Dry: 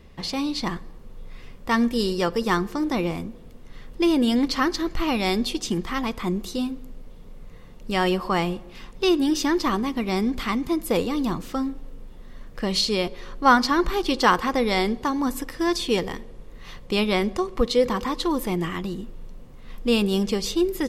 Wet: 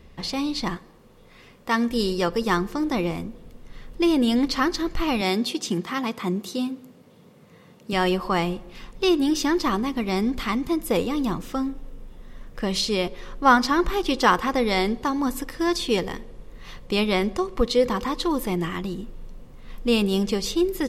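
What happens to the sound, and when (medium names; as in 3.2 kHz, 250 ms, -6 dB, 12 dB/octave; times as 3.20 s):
0.75–1.90 s: high-pass 210 Hz 6 dB/octave
5.21–7.93 s: high-pass 120 Hz 24 dB/octave
10.77–14.49 s: band-stop 4.4 kHz, Q 16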